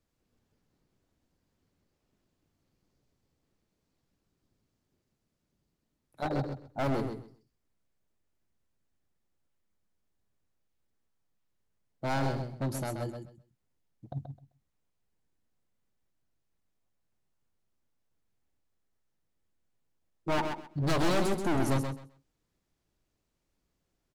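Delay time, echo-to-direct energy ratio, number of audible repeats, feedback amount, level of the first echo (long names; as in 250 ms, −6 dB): 130 ms, −6.5 dB, 2, 19%, −6.5 dB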